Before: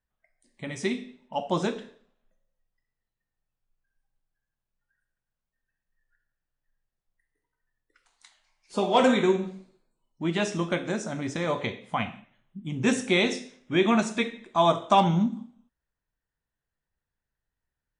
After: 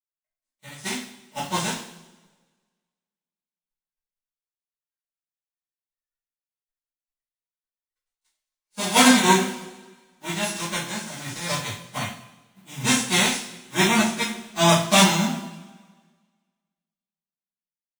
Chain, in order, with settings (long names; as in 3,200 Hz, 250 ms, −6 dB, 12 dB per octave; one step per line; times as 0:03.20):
spectral envelope flattened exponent 0.3
coupled-rooms reverb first 0.34 s, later 2.7 s, from −18 dB, DRR −9 dB
multiband upward and downward expander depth 70%
level −8 dB